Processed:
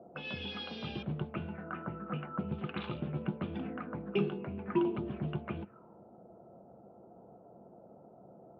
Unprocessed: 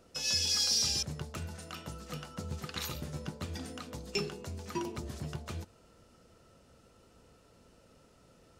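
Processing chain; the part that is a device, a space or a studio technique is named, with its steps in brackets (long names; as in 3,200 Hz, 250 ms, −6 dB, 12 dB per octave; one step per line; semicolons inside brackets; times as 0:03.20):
envelope filter bass rig (envelope-controlled low-pass 660–3,400 Hz up, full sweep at −35.5 dBFS; loudspeaker in its box 86–2,200 Hz, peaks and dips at 94 Hz −5 dB, 140 Hz +4 dB, 200 Hz +9 dB, 350 Hz +8 dB, 700 Hz +4 dB, 1,900 Hz −10 dB)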